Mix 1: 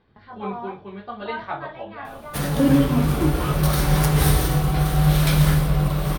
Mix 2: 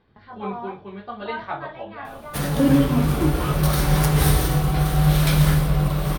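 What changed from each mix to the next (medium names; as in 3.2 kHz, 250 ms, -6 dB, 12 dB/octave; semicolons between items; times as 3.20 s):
no change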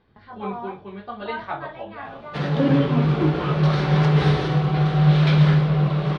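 background: add cabinet simulation 150–4100 Hz, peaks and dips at 160 Hz +7 dB, 270 Hz -4 dB, 400 Hz +5 dB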